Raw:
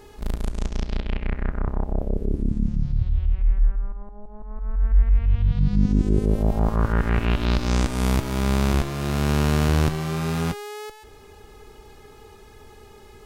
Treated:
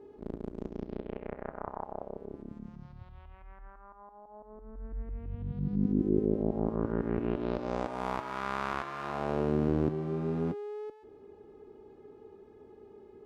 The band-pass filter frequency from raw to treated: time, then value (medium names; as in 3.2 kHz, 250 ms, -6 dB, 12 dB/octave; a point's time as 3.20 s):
band-pass filter, Q 1.7
0.90 s 340 Hz
1.85 s 970 Hz
4.22 s 970 Hz
4.66 s 340 Hz
7.22 s 340 Hz
8.38 s 1.2 kHz
9.01 s 1.2 kHz
9.57 s 330 Hz